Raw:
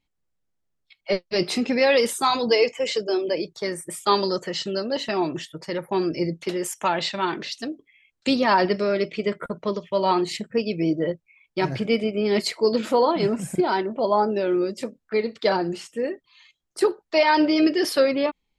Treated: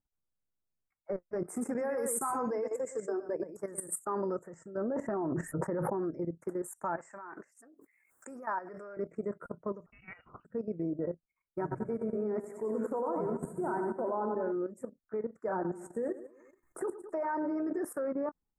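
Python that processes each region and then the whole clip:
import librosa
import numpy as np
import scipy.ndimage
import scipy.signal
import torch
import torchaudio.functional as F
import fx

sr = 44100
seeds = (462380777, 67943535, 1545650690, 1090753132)

y = fx.chain(x, sr, fx.high_shelf(hz=2700.0, db=10.0),
    fx.echo_single(ms=118, db=-7.0), at=(1.49, 3.98))
y = fx.chain(y, sr, fx.lowpass(hz=1600.0, slope=6),
    fx.env_flatten(amount_pct=100), at=(4.77, 6.0))
y = fx.chain(y, sr, fx.highpass(hz=1300.0, slope=6),
    fx.pre_swell(db_per_s=51.0), at=(6.97, 8.97))
y = fx.chain(y, sr, fx.tilt_shelf(db=5.5, hz=1400.0),
    fx.freq_invert(carrier_hz=3200), at=(9.86, 10.45))
y = fx.chain(y, sr, fx.high_shelf(hz=3400.0, db=-5.0),
    fx.hum_notches(base_hz=50, count=5),
    fx.echo_feedback(ms=95, feedback_pct=59, wet_db=-7.0), at=(11.61, 14.52))
y = fx.chain(y, sr, fx.hum_notches(base_hz=50, count=7),
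    fx.echo_feedback(ms=107, feedback_pct=42, wet_db=-14.5),
    fx.band_squash(depth_pct=70), at=(15.48, 17.83))
y = scipy.signal.sosfilt(scipy.signal.ellip(3, 1.0, 70, [1500.0, 8000.0], 'bandstop', fs=sr, output='sos'), y)
y = fx.level_steps(y, sr, step_db=13)
y = F.gain(torch.from_numpy(y), -6.5).numpy()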